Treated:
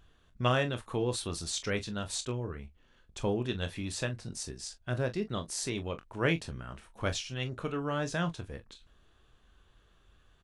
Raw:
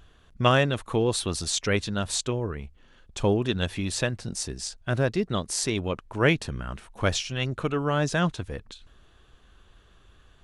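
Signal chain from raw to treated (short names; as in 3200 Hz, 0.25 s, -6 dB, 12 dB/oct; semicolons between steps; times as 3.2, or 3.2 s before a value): early reflections 24 ms -10 dB, 42 ms -14.5 dB; gain -8 dB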